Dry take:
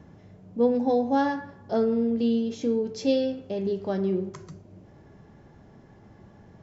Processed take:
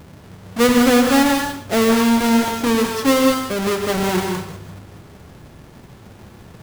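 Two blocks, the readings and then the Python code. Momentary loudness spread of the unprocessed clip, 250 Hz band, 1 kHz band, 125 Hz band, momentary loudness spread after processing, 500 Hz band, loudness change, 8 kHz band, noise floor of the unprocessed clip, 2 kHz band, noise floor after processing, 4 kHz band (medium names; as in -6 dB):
7 LU, +9.5 dB, +11.0 dB, +8.5 dB, 11 LU, +6.5 dB, +9.0 dB, no reading, -53 dBFS, +18.5 dB, -43 dBFS, +18.0 dB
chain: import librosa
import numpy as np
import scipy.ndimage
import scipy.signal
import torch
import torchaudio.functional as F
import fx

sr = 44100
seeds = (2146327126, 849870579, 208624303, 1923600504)

y = fx.halfwave_hold(x, sr)
y = fx.rev_gated(y, sr, seeds[0], gate_ms=220, shape='rising', drr_db=3.0)
y = y * librosa.db_to_amplitude(3.5)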